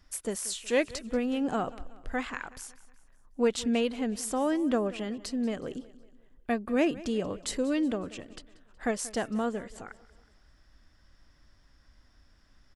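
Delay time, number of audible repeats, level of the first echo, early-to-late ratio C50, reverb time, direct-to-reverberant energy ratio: 184 ms, 3, -19.0 dB, no reverb, no reverb, no reverb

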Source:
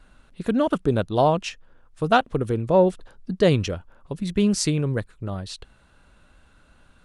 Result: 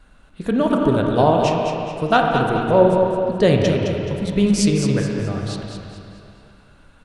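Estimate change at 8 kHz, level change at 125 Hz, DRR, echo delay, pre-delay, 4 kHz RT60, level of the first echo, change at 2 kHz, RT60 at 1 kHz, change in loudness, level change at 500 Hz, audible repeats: +2.5 dB, +4.5 dB, -1.0 dB, 213 ms, 17 ms, 2.5 s, -7.5 dB, +5.0 dB, 2.7 s, +4.5 dB, +5.0 dB, 3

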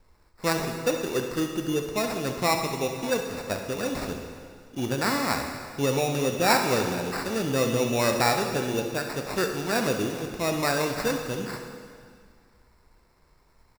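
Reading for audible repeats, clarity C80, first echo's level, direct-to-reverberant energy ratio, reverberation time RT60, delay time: 1, 6.5 dB, -12.0 dB, 3.5 dB, 2.1 s, 68 ms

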